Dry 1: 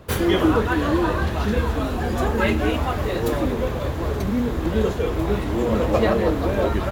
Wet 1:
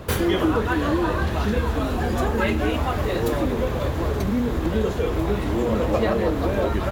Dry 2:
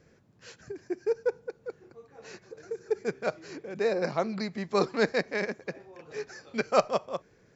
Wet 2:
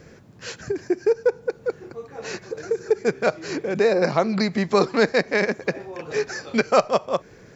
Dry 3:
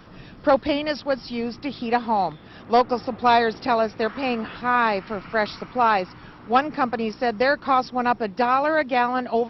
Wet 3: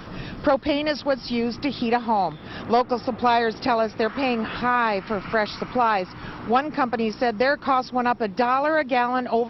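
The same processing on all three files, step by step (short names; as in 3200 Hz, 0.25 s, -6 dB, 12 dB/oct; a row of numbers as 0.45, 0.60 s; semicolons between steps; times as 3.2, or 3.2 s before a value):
compressor 2:1, threshold -34 dBFS; match loudness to -23 LUFS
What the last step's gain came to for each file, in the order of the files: +8.0, +14.0, +9.0 dB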